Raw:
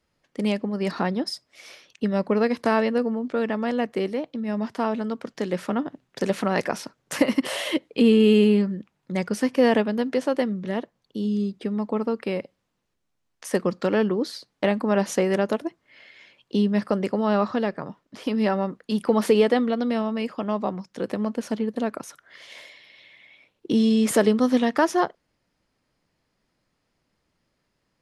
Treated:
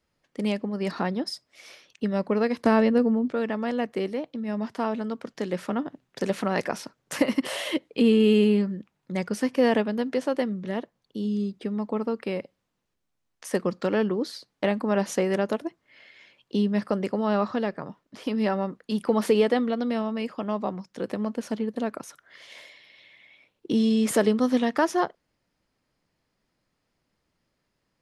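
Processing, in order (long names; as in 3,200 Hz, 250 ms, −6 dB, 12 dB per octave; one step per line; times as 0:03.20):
0:02.65–0:03.32: low-shelf EQ 320 Hz +10 dB
level −2.5 dB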